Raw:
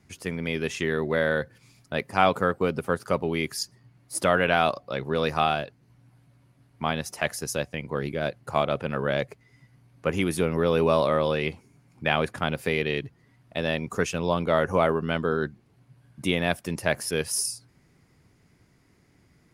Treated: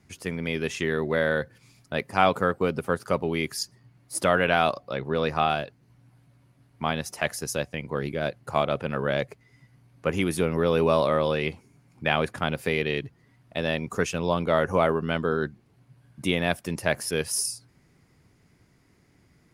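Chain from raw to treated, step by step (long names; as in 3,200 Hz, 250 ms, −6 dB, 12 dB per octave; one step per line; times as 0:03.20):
0:04.93–0:05.50: low-pass filter 3,900 Hz 6 dB per octave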